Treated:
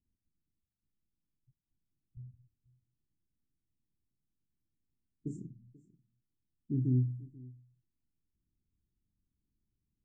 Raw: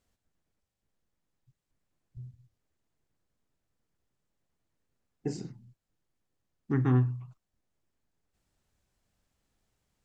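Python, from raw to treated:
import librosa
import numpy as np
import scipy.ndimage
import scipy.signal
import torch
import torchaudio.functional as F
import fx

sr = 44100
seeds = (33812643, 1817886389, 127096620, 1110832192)

y = fx.env_lowpass(x, sr, base_hz=610.0, full_db=-29.5)
y = scipy.signal.sosfilt(scipy.signal.cheby2(4, 40, [620.0, 4800.0], 'bandstop', fs=sr, output='sos'), y)
y = y + 10.0 ** (-21.5 / 20.0) * np.pad(y, (int(487 * sr / 1000.0), 0))[:len(y)]
y = y * 10.0 ** (-4.0 / 20.0)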